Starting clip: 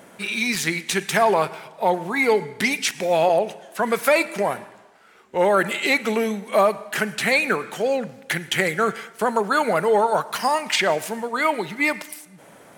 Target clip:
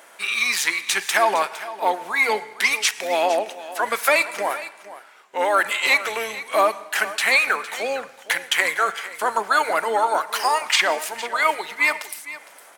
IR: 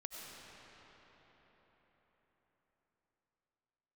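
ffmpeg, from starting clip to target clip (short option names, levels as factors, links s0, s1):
-filter_complex "[0:a]highpass=800,asplit=2[s0][s1];[s1]asetrate=22050,aresample=44100,atempo=2,volume=0.141[s2];[s0][s2]amix=inputs=2:normalize=0,asplit=2[s3][s4];[s4]aecho=0:1:459:0.168[s5];[s3][s5]amix=inputs=2:normalize=0,volume=1.41"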